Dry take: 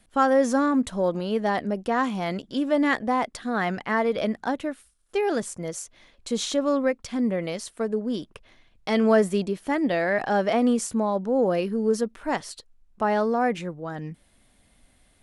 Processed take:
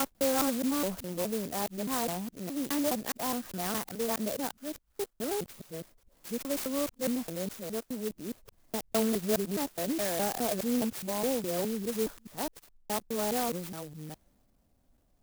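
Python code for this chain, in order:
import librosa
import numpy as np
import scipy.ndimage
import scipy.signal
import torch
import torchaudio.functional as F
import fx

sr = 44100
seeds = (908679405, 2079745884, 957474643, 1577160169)

y = fx.local_reverse(x, sr, ms=208.0)
y = fx.transient(y, sr, attack_db=-1, sustain_db=4)
y = fx.env_lowpass(y, sr, base_hz=1400.0, full_db=-21.0)
y = fx.clock_jitter(y, sr, seeds[0], jitter_ms=0.13)
y = y * 10.0 ** (-8.0 / 20.0)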